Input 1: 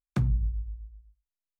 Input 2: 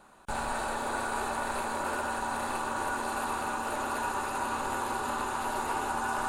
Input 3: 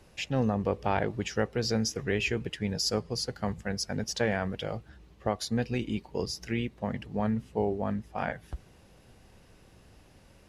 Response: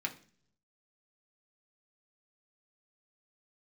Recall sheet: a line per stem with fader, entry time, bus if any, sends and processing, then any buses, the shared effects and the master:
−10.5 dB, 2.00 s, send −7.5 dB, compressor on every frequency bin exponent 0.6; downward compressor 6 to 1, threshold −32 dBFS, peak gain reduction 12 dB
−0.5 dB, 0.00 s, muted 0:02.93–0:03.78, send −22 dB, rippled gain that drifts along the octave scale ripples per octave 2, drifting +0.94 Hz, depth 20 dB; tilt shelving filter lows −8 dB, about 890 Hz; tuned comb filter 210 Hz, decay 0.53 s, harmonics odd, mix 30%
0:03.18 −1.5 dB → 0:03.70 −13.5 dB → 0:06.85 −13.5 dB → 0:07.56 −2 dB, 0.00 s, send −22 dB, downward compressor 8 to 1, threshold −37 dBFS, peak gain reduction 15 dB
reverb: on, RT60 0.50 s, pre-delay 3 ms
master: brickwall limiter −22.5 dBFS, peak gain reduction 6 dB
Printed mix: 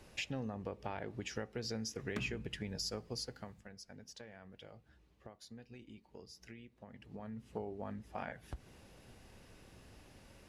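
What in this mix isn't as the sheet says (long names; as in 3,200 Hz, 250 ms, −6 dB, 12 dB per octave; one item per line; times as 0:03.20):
stem 2: muted
reverb return +8.0 dB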